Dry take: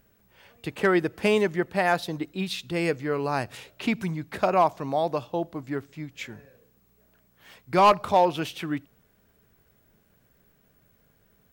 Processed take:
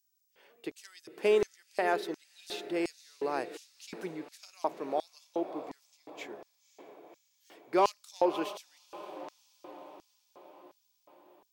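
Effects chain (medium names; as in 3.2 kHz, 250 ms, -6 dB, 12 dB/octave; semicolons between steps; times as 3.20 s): echo that smears into a reverb 544 ms, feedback 59%, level -14 dB; LFO high-pass square 1.4 Hz 370–5700 Hz; trim -8.5 dB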